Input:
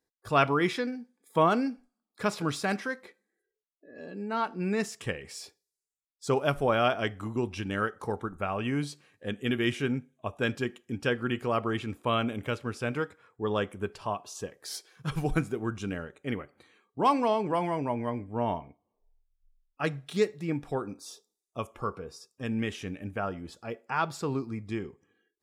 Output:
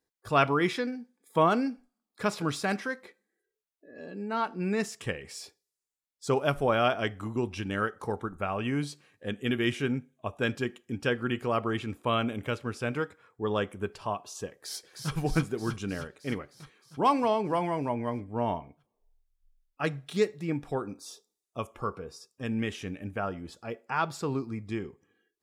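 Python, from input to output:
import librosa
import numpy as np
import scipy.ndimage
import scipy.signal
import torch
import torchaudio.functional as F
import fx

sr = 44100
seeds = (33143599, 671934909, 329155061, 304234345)

y = fx.echo_throw(x, sr, start_s=14.52, length_s=0.62, ms=310, feedback_pct=70, wet_db=-4.5)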